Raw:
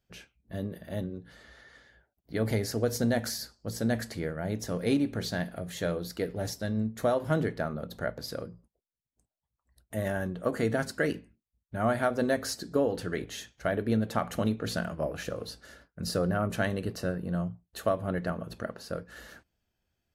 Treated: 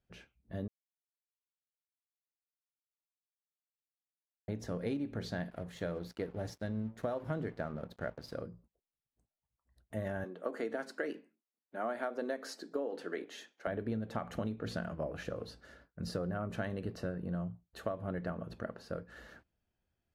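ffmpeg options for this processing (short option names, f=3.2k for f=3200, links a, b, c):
-filter_complex "[0:a]asettb=1/sr,asplit=3[a][b][c];[a]atrim=end=5.504[d];[b]atrim=start=5.5:end=8.36,asetpts=PTS-STARTPTS,afade=t=in:d=0.004:c=qsin,afade=t=out:st=2.856:d=0.004:c=qsin,aeval=exprs='sgn(val(0))*max(abs(val(0))-0.00335,0)':c=same[e];[c]atrim=start=8.356[f];[d][e]acrossfade=d=0.004:c1=hsin:c2=qsin[g];[g][f]acrossfade=d=0.004:c1=qsin:c2=hsin,asettb=1/sr,asplit=3[h][i][j];[h]atrim=end=10.244[k];[i]atrim=start=10.24:end=13.67,asetpts=PTS-STARTPTS,afade=t=in:d=0.004:c=qsin,afade=t=out:st=3.426:d=0.004:c=qsin,highpass=f=270:w=0.5412,highpass=f=270:w=1.3066[l];[j]atrim=start=13.666[m];[k][l]acrossfade=d=0.004:c1=hsin:c2=qsin[n];[n][m]acrossfade=d=0.004:c1=qsin:c2=hsin,asplit=3[o][p][q];[o]atrim=end=0.68,asetpts=PTS-STARTPTS,afade=t=out:st=0.676:d=0.004:c=hsin[r];[p]atrim=start=0.68:end=4.48,asetpts=PTS-STARTPTS,volume=0[s];[q]atrim=start=4.48,asetpts=PTS-STARTPTS,afade=t=in:d=0.004:c=hsin[t];[r][s][t]concat=n=3:v=0:a=1,lowpass=f=2.3k:p=1,acompressor=threshold=-29dB:ratio=6,volume=-3.5dB"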